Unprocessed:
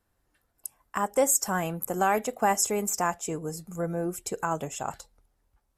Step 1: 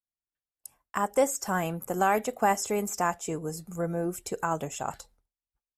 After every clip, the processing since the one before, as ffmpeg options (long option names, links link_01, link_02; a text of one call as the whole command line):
ffmpeg -i in.wav -filter_complex "[0:a]acrossover=split=4800[link_01][link_02];[link_02]acompressor=threshold=-33dB:ratio=4:attack=1:release=60[link_03];[link_01][link_03]amix=inputs=2:normalize=0,agate=range=-33dB:threshold=-52dB:ratio=3:detection=peak" out.wav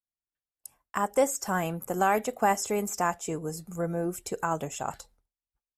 ffmpeg -i in.wav -af anull out.wav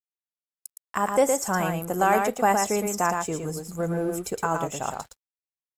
ffmpeg -i in.wav -filter_complex "[0:a]asplit=2[link_01][link_02];[link_02]aecho=0:1:114:0.596[link_03];[link_01][link_03]amix=inputs=2:normalize=0,aeval=exprs='sgn(val(0))*max(abs(val(0))-0.00188,0)':channel_layout=same,volume=3dB" out.wav